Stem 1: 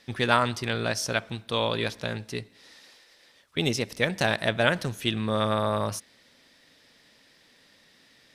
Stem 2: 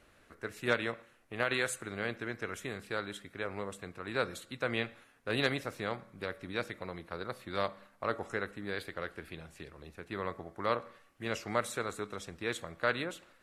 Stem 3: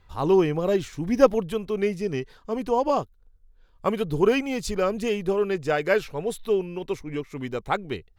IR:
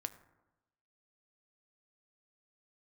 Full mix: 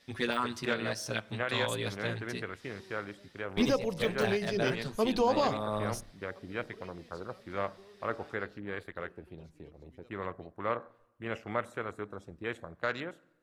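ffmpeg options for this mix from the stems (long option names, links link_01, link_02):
-filter_complex "[0:a]deesser=0.6,asplit=2[link_01][link_02];[link_02]adelay=8.3,afreqshift=-0.45[link_03];[link_01][link_03]amix=inputs=2:normalize=1,volume=-4dB,asplit=3[link_04][link_05][link_06];[link_05]volume=-12dB[link_07];[1:a]afwtdn=0.00708,volume=-3dB,asplit=2[link_08][link_09];[link_09]volume=-7.5dB[link_10];[2:a]equalizer=frequency=4300:width_type=o:width=0.63:gain=13.5,bandreject=frequency=69.76:width_type=h:width=4,bandreject=frequency=139.52:width_type=h:width=4,bandreject=frequency=209.28:width_type=h:width=4,bandreject=frequency=279.04:width_type=h:width=4,bandreject=frequency=348.8:width_type=h:width=4,bandreject=frequency=418.56:width_type=h:width=4,bandreject=frequency=488.32:width_type=h:width=4,bandreject=frequency=558.08:width_type=h:width=4,bandreject=frequency=627.84:width_type=h:width=4,bandreject=frequency=697.6:width_type=h:width=4,bandreject=frequency=767.36:width_type=h:width=4,bandreject=frequency=837.12:width_type=h:width=4,bandreject=frequency=906.88:width_type=h:width=4,bandreject=frequency=976.64:width_type=h:width=4,dynaudnorm=framelen=280:gausssize=5:maxgain=11.5dB,adelay=2500,volume=-5dB[link_11];[link_06]apad=whole_len=471365[link_12];[link_11][link_12]sidechaingate=range=-35dB:threshold=-54dB:ratio=16:detection=peak[link_13];[3:a]atrim=start_sample=2205[link_14];[link_07][link_10]amix=inputs=2:normalize=0[link_15];[link_15][link_14]afir=irnorm=-1:irlink=0[link_16];[link_04][link_08][link_13][link_16]amix=inputs=4:normalize=0,alimiter=limit=-17.5dB:level=0:latency=1:release=463"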